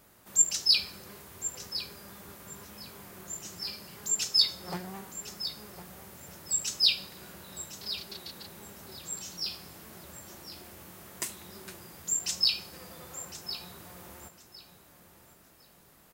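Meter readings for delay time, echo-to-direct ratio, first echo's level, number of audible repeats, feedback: 1,057 ms, −12.5 dB, −12.5 dB, 2, 21%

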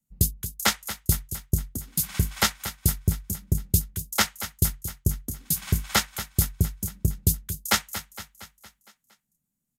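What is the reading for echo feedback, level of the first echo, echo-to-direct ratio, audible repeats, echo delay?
56%, −13.0 dB, −11.5 dB, 5, 231 ms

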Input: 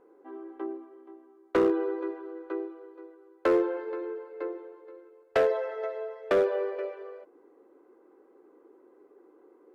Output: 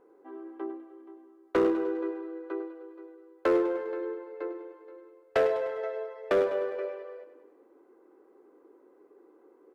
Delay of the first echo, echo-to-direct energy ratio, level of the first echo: 101 ms, −10.5 dB, −12.0 dB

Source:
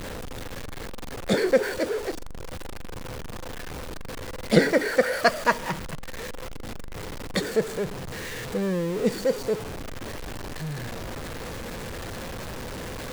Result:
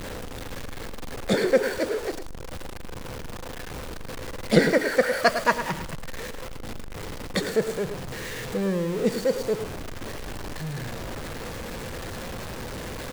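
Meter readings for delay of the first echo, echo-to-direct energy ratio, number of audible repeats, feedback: 107 ms, −10.5 dB, 1, repeats not evenly spaced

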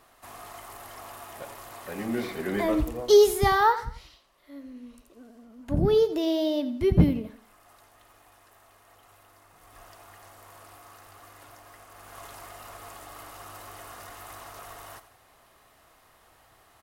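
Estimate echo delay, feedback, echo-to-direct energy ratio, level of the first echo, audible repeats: 86 ms, 36%, −13.5 dB, −14.0 dB, 3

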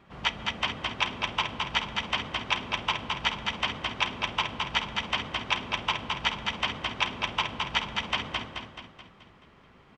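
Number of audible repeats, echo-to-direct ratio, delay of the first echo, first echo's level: 6, −2.5 dB, 215 ms, −3.5 dB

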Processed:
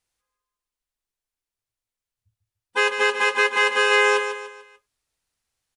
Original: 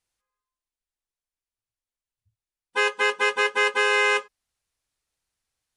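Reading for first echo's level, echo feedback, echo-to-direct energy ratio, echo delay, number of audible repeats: −8.5 dB, 40%, −7.5 dB, 147 ms, 4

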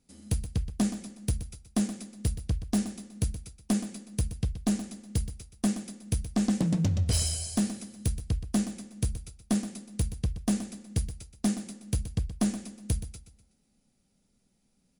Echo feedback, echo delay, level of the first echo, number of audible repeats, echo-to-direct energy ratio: 38%, 124 ms, −12.0 dB, 3, −11.5 dB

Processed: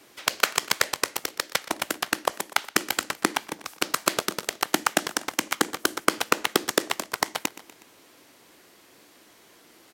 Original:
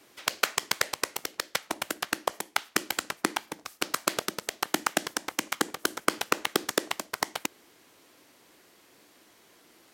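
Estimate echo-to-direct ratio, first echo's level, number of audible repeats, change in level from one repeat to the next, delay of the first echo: −16.5 dB, −18.0 dB, 3, −5.0 dB, 122 ms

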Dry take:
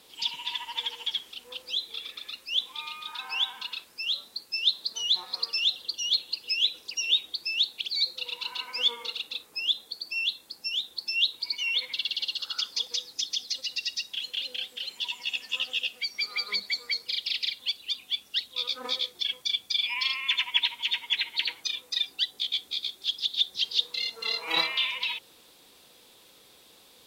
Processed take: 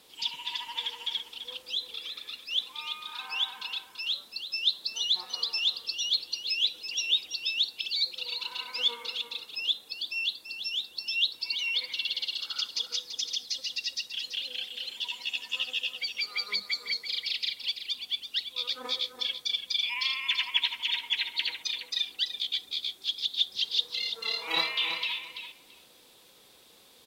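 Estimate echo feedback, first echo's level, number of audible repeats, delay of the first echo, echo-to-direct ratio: 15%, −9.0 dB, 2, 335 ms, −9.0 dB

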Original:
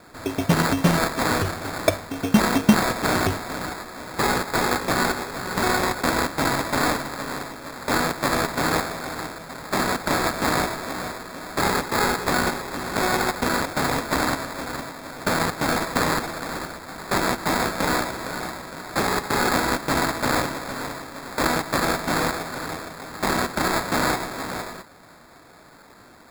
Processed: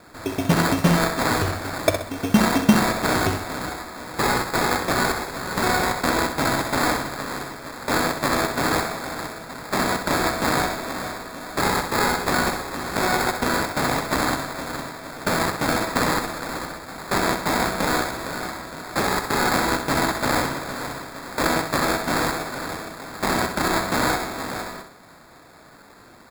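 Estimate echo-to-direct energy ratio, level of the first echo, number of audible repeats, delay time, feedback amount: −7.5 dB, −8.0 dB, 3, 64 ms, 38%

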